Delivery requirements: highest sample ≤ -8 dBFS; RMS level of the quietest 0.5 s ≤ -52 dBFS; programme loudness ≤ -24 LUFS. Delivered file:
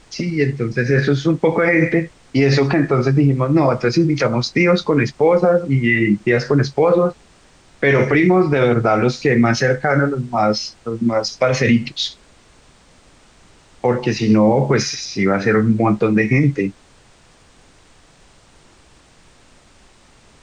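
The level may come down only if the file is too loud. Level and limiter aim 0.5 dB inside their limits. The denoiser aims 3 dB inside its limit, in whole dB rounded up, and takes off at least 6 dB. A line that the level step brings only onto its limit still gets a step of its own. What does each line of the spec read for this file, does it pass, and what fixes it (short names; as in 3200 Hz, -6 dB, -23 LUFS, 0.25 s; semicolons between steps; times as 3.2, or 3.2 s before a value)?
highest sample -5.5 dBFS: fail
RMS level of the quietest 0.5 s -50 dBFS: fail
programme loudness -16.5 LUFS: fail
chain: gain -8 dB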